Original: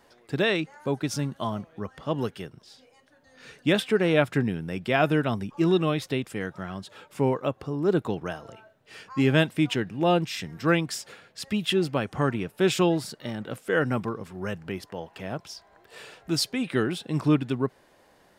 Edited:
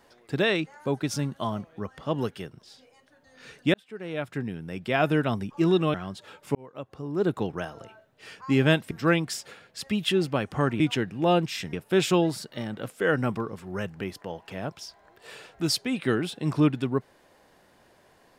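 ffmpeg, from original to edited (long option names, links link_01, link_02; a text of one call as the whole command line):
ffmpeg -i in.wav -filter_complex "[0:a]asplit=7[link_01][link_02][link_03][link_04][link_05][link_06][link_07];[link_01]atrim=end=3.74,asetpts=PTS-STARTPTS,afade=type=out:start_time=3.736:duration=0.004:curve=hsin[link_08];[link_02]atrim=start=3.74:end=5.942,asetpts=PTS-STARTPTS,afade=type=in:duration=1.47[link_09];[link_03]atrim=start=6.618:end=7.23,asetpts=PTS-STARTPTS,afade=type=out:start_time=0.608:duration=0.004:curve=hsin[link_10];[link_04]atrim=start=7.23:end=9.592,asetpts=PTS-STARTPTS,afade=type=in:duration=0.86[link_11];[link_05]atrim=start=10.518:end=12.412[link_12];[link_06]atrim=start=9.588:end=10.522[link_13];[link_07]atrim=start=12.408[link_14];[link_08][link_09]concat=n=2:v=0:a=1[link_15];[link_10][link_11]concat=n=2:v=0:a=1[link_16];[link_15][link_16]acrossfade=duration=0.004:curve1=hsin:curve2=hsin[link_17];[link_17][link_12]acrossfade=duration=0.004:curve1=hsin:curve2=hsin[link_18];[link_18][link_13]acrossfade=duration=0.004:curve1=hsin:curve2=hsin[link_19];[link_19][link_14]acrossfade=duration=0.004:curve1=hsin:curve2=hsin" out.wav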